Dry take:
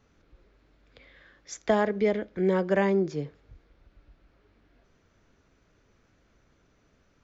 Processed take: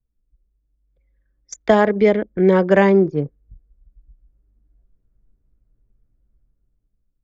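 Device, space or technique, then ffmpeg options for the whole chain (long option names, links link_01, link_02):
voice memo with heavy noise removal: -af "anlmdn=2.51,dynaudnorm=framelen=360:gausssize=7:maxgain=12dB,volume=1.5dB"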